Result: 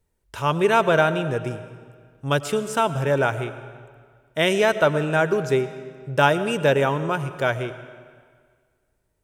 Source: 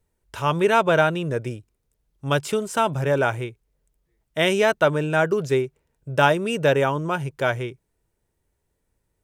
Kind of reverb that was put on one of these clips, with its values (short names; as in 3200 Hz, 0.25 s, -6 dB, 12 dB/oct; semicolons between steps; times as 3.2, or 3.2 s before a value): digital reverb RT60 1.8 s, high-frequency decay 0.85×, pre-delay 65 ms, DRR 12.5 dB